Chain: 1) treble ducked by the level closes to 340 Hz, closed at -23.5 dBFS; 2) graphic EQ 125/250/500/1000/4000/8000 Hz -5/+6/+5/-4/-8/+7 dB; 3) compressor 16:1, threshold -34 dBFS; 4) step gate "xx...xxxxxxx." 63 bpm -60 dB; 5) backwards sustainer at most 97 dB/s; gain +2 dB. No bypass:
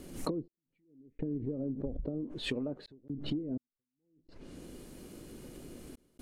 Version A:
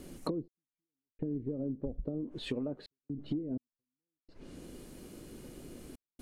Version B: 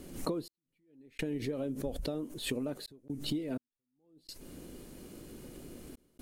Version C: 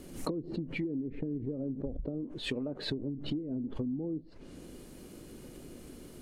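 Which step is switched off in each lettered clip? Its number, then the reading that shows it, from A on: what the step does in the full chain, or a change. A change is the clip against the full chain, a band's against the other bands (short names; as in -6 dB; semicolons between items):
5, 2 kHz band -5.0 dB; 1, 8 kHz band +4.5 dB; 4, 8 kHz band -2.0 dB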